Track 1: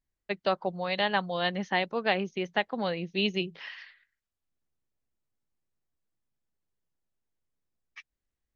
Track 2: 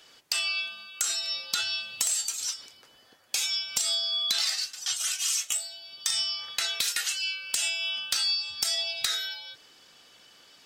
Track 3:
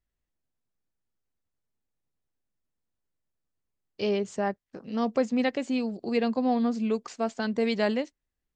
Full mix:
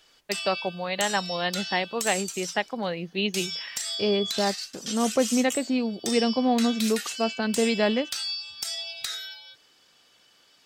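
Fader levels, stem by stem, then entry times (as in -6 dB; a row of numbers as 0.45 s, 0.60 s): +1.0 dB, -4.5 dB, +2.5 dB; 0.00 s, 0.00 s, 0.00 s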